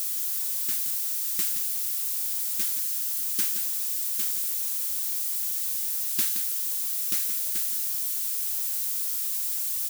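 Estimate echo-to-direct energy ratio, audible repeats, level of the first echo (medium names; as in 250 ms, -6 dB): -9.5 dB, 1, -9.5 dB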